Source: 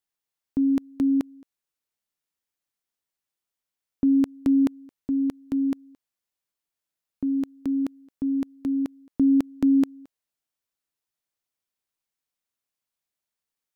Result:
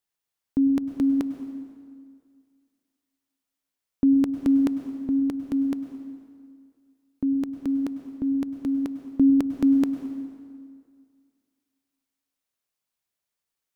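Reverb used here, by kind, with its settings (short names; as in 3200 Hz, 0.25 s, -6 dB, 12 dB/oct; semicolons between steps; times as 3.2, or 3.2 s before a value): plate-style reverb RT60 2.1 s, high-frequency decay 0.75×, pre-delay 90 ms, DRR 9 dB; gain +1.5 dB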